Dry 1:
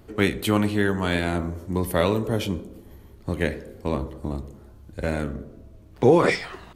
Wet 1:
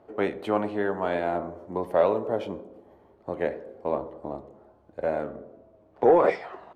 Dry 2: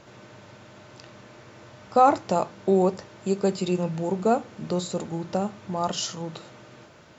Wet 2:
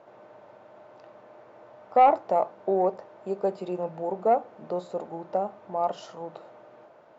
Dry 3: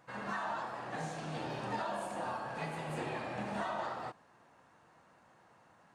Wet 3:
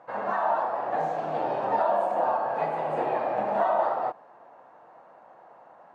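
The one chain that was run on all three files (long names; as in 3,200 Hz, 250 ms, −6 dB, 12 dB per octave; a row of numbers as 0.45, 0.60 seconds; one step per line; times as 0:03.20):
resonant band-pass 680 Hz, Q 1.9
soft clipping −12 dBFS
loudness normalisation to −27 LKFS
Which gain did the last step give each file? +5.0, +3.5, +16.5 decibels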